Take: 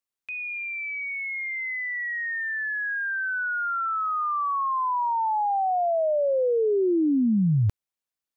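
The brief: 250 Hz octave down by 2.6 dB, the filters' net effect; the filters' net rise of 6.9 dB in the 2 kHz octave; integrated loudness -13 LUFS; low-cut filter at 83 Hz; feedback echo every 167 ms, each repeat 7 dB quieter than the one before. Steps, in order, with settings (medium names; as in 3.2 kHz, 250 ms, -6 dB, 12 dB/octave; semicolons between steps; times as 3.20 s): high-pass 83 Hz; peaking EQ 250 Hz -3.5 dB; peaking EQ 2 kHz +8.5 dB; feedback delay 167 ms, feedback 45%, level -7 dB; trim +8 dB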